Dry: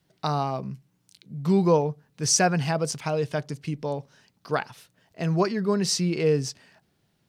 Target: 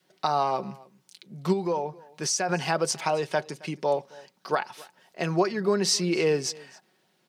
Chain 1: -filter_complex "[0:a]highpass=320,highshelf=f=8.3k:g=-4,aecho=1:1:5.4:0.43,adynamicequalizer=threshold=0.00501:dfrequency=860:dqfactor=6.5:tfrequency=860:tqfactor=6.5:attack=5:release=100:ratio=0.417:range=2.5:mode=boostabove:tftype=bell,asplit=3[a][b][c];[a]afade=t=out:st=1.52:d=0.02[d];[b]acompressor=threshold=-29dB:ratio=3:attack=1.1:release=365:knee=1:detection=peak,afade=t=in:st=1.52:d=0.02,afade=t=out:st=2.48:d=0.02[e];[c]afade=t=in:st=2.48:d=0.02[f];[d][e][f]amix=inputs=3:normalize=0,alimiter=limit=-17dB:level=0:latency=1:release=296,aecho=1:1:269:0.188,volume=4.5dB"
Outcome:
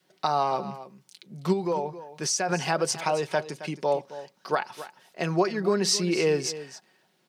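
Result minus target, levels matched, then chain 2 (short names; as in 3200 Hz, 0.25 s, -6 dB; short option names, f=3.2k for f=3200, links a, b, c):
echo-to-direct +8.5 dB
-filter_complex "[0:a]highpass=320,highshelf=f=8.3k:g=-4,aecho=1:1:5.4:0.43,adynamicequalizer=threshold=0.00501:dfrequency=860:dqfactor=6.5:tfrequency=860:tqfactor=6.5:attack=5:release=100:ratio=0.417:range=2.5:mode=boostabove:tftype=bell,asplit=3[a][b][c];[a]afade=t=out:st=1.52:d=0.02[d];[b]acompressor=threshold=-29dB:ratio=3:attack=1.1:release=365:knee=1:detection=peak,afade=t=in:st=1.52:d=0.02,afade=t=out:st=2.48:d=0.02[e];[c]afade=t=in:st=2.48:d=0.02[f];[d][e][f]amix=inputs=3:normalize=0,alimiter=limit=-17dB:level=0:latency=1:release=296,aecho=1:1:269:0.0708,volume=4.5dB"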